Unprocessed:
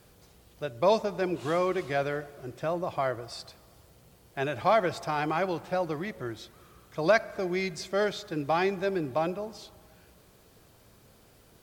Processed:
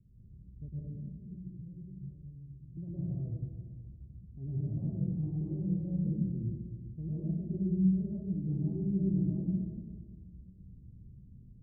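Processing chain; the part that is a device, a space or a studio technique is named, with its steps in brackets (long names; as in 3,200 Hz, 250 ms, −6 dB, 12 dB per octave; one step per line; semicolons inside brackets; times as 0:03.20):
0:00.68–0:02.77: guitar amp tone stack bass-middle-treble 10-0-1
club heard from the street (brickwall limiter −20 dBFS, peak gain reduction 10 dB; low-pass filter 200 Hz 24 dB per octave; convolution reverb RT60 1.4 s, pre-delay 103 ms, DRR −8.5 dB)
tape delay 149 ms, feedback 72%, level −16.5 dB, low-pass 1,000 Hz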